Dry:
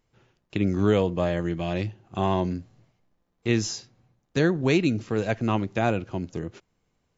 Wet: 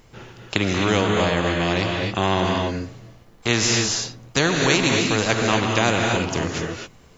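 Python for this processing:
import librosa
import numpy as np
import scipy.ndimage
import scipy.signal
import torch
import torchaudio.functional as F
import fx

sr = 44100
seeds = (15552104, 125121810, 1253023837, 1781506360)

y = fx.high_shelf(x, sr, hz=3100.0, db=-7.5, at=(0.78, 2.57))
y = fx.rev_gated(y, sr, seeds[0], gate_ms=290, shape='rising', drr_db=3.0)
y = fx.spectral_comp(y, sr, ratio=2.0)
y = y * librosa.db_to_amplitude(6.0)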